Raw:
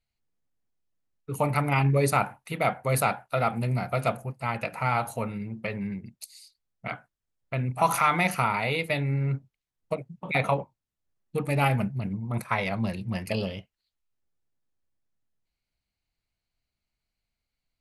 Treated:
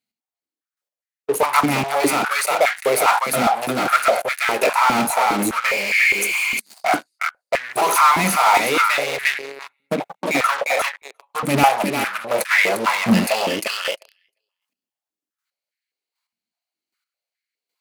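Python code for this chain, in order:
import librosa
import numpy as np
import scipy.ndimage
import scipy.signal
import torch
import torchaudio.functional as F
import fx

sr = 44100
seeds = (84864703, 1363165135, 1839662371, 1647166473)

p1 = fx.high_shelf(x, sr, hz=2500.0, db=7.0)
p2 = p1 + fx.echo_thinned(p1, sr, ms=352, feedback_pct=15, hz=820.0, wet_db=-4.5, dry=0)
p3 = fx.rider(p2, sr, range_db=3, speed_s=2.0)
p4 = fx.chopper(p3, sr, hz=1.3, depth_pct=60, duty_pct=15)
p5 = fx.spec_repair(p4, sr, seeds[0], start_s=5.7, length_s=0.87, low_hz=2100.0, high_hz=5800.0, source='before')
p6 = fx.fuzz(p5, sr, gain_db=42.0, gate_db=-48.0)
p7 = p5 + F.gain(torch.from_numpy(p6), -4.0).numpy()
p8 = fx.filter_held_highpass(p7, sr, hz=4.9, low_hz=230.0, high_hz=1800.0)
y = F.gain(torch.from_numpy(p8), -2.5).numpy()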